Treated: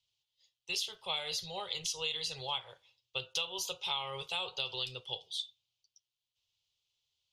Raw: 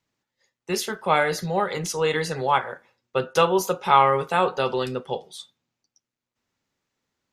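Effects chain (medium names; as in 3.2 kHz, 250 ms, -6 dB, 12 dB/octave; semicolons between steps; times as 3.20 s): FFT filter 110 Hz 0 dB, 230 Hz -25 dB, 430 Hz -11 dB, 980 Hz -8 dB, 1.7 kHz -17 dB, 3.1 kHz +15 dB, 7.8 kHz +2 dB, 13 kHz -2 dB; compression 6:1, threshold -24 dBFS, peak gain reduction 11 dB; trim -8 dB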